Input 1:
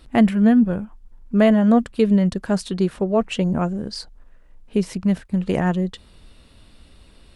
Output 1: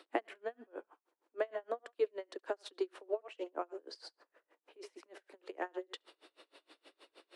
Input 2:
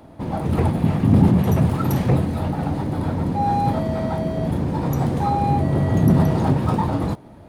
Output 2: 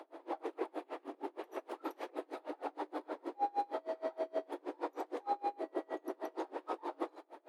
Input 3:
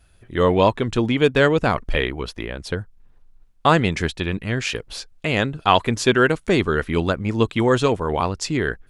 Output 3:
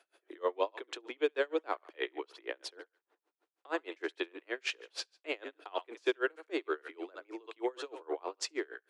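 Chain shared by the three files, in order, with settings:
LPF 2900 Hz 6 dB/oct; thinning echo 70 ms, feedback 23%, high-pass 790 Hz, level -13 dB; compressor 3:1, threshold -30 dBFS; steep high-pass 310 Hz 72 dB/oct; dB-linear tremolo 6.4 Hz, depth 32 dB; gain +2 dB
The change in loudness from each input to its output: -22.0, -21.5, -17.5 LU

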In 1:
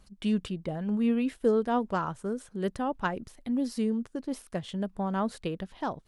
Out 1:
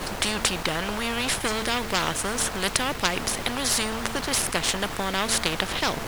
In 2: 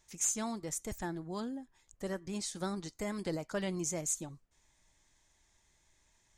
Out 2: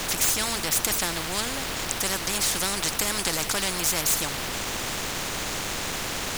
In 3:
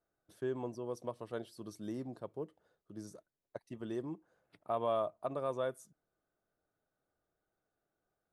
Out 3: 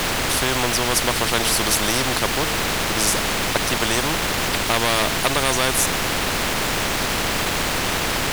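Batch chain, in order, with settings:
de-hum 225 Hz, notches 3; added noise brown -45 dBFS; sample leveller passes 1; spectral compressor 4:1; normalise peaks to -3 dBFS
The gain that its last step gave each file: +12.0, +16.5, +18.5 dB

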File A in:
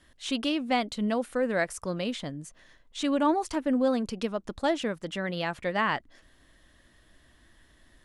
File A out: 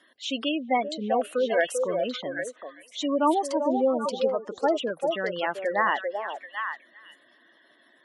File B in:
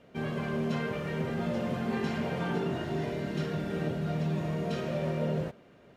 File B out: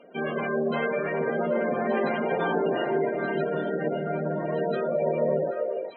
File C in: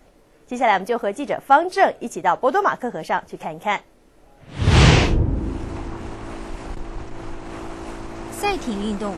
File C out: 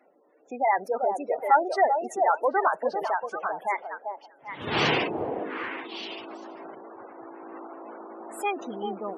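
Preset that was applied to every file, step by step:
HPF 330 Hz 12 dB/oct; spectral gate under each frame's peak -15 dB strong; on a send: delay with a stepping band-pass 0.392 s, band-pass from 560 Hz, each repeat 1.4 oct, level -2 dB; on the sum: match loudness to -27 LUFS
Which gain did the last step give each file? +4.0, +9.0, -5.0 dB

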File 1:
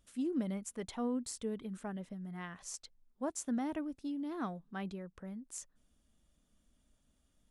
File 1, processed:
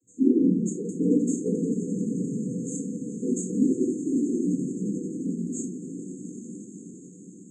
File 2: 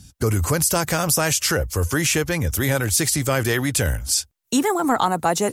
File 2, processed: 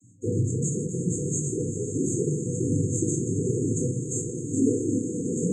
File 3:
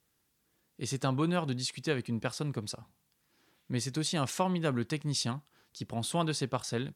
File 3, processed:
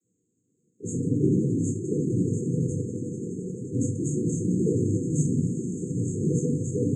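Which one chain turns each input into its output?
swelling echo 87 ms, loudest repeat 8, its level -16 dB; noise vocoder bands 16; FFT band-reject 510–6300 Hz; shoebox room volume 410 m³, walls furnished, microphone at 3.3 m; match loudness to -27 LUFS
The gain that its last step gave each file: +6.0, -10.0, +1.5 dB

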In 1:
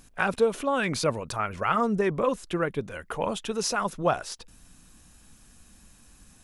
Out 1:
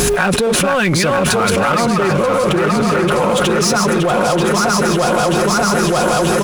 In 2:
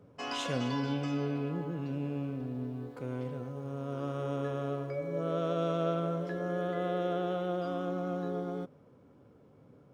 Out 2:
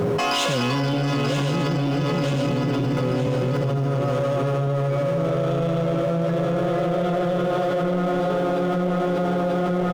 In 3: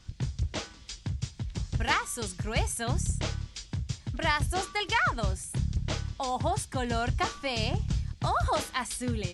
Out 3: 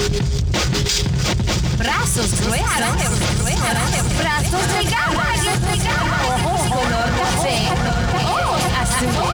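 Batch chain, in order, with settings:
regenerating reverse delay 0.467 s, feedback 71%, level -3 dB; HPF 52 Hz 12 dB/oct; comb 5.6 ms, depth 43%; whine 410 Hz -57 dBFS; power-law curve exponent 0.7; echo 1.092 s -12 dB; fast leveller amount 100%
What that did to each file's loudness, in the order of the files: +13.5, +12.0, +13.0 LU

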